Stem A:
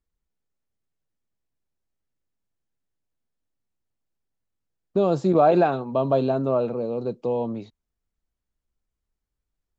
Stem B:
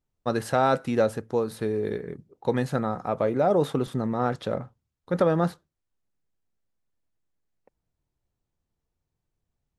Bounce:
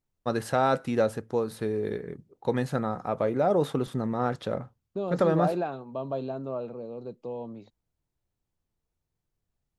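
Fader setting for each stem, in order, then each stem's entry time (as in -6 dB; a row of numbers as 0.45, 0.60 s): -11.0, -2.0 dB; 0.00, 0.00 s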